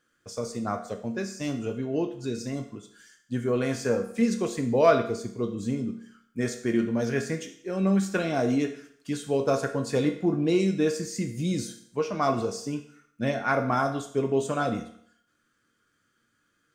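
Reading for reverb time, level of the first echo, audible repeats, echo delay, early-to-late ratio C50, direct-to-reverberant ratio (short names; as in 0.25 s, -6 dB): 0.60 s, none, none, none, 10.0 dB, 4.0 dB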